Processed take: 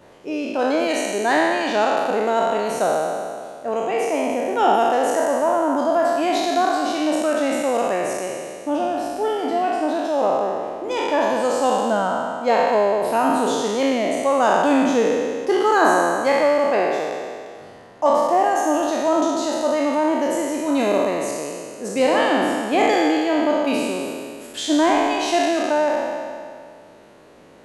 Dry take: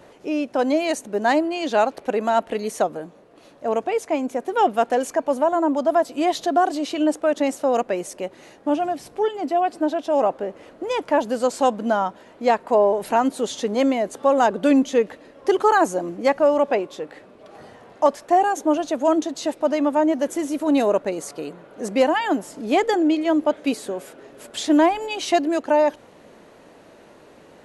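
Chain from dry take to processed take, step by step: spectral sustain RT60 2.12 s; trim -3 dB

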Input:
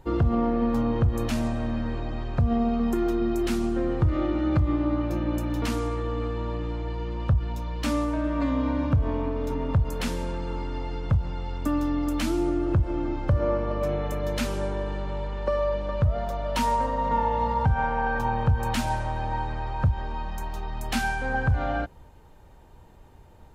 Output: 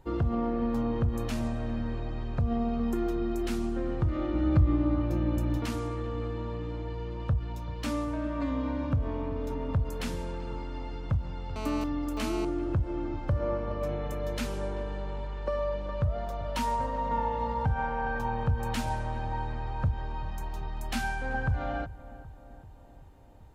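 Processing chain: 4.33–5.58 s: bass shelf 270 Hz +7 dB; filtered feedback delay 386 ms, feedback 66%, low-pass 1.4 kHz, level -16.5 dB; 11.56–12.45 s: mobile phone buzz -32 dBFS; trim -5.5 dB

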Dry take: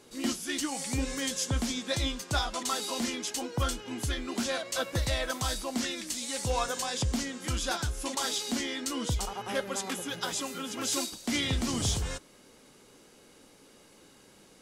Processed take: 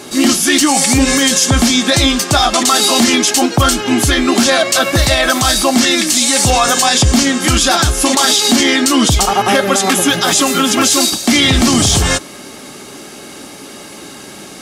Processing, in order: bass shelf 130 Hz -7.5 dB; comb of notches 490 Hz; loudness maximiser +27.5 dB; trim -1 dB

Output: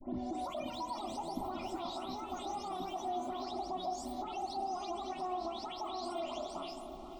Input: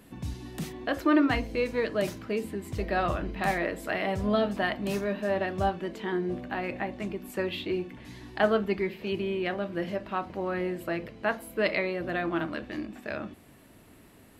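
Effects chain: delay that grows with frequency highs late, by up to 902 ms; hum notches 50/100/150/200/250/300/350/400 Hz; speed mistake 7.5 ips tape played at 15 ips; compression, threshold -34 dBFS, peak gain reduction 11 dB; peak limiter -36 dBFS, peak gain reduction 11.5 dB; tilt EQ -2.5 dB/octave; static phaser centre 440 Hz, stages 6; on a send: filtered feedback delay 480 ms, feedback 83%, low-pass 1.4 kHz, level -10 dB; on the sum: spring tank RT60 3.9 s, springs 43 ms, chirp 50 ms, DRR 10 dB; trim +5.5 dB

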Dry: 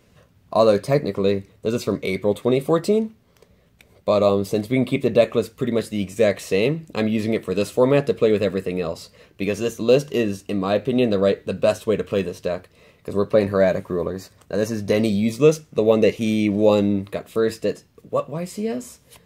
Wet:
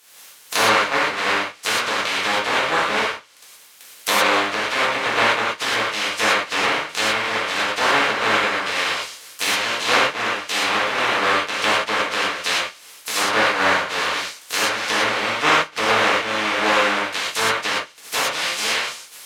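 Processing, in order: spectral contrast reduction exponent 0.12; high-pass 1.1 kHz 6 dB/octave; low-pass that closes with the level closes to 1.6 kHz, closed at -19 dBFS; gated-style reverb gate 150 ms flat, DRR -8 dB; trim +3 dB

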